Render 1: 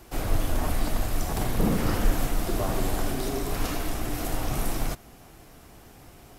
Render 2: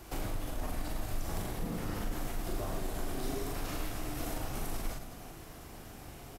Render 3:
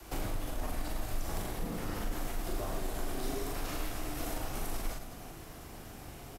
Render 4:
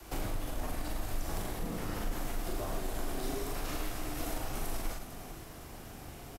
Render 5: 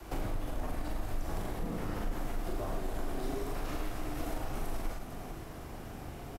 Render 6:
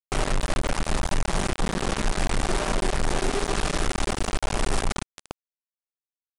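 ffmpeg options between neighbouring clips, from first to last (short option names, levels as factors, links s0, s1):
-filter_complex "[0:a]alimiter=limit=0.106:level=0:latency=1:release=37,acompressor=threshold=0.02:ratio=6,asplit=2[s0][s1];[s1]aecho=0:1:40|104|206.4|370.2|632.4:0.631|0.398|0.251|0.158|0.1[s2];[s0][s2]amix=inputs=2:normalize=0,volume=0.891"
-af "adynamicequalizer=threshold=0.00398:dfrequency=130:dqfactor=0.75:tfrequency=130:tqfactor=0.75:attack=5:release=100:ratio=0.375:range=2:mode=cutabove:tftype=bell,volume=1.12"
-af "aecho=1:1:448:0.211"
-filter_complex "[0:a]asplit=2[s0][s1];[s1]acompressor=threshold=0.01:ratio=6,volume=1[s2];[s0][s2]amix=inputs=2:normalize=0,highshelf=f=2700:g=-9,volume=0.794"
-af "aecho=1:1:5.1:0.68,acrusher=bits=4:mix=0:aa=0.000001,aresample=22050,aresample=44100,volume=1.88"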